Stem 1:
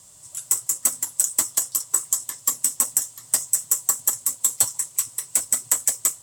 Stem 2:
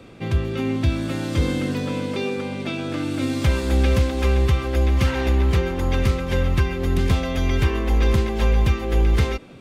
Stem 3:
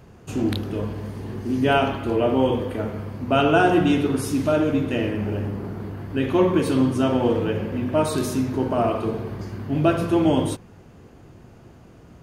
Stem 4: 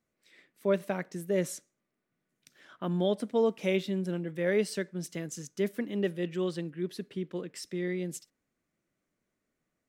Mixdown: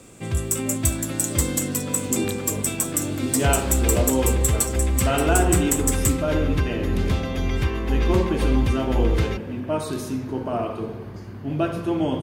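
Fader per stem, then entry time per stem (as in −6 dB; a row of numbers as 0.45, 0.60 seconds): −4.0, −3.5, −4.5, −12.0 decibels; 0.00, 0.00, 1.75, 0.00 seconds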